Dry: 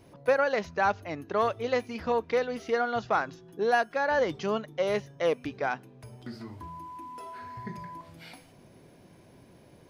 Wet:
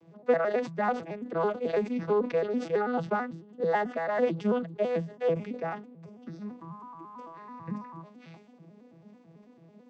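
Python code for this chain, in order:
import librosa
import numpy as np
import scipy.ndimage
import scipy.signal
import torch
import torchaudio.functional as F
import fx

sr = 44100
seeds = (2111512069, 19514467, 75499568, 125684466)

y = fx.vocoder_arp(x, sr, chord='major triad', root=52, every_ms=110)
y = fx.sustainer(y, sr, db_per_s=130.0)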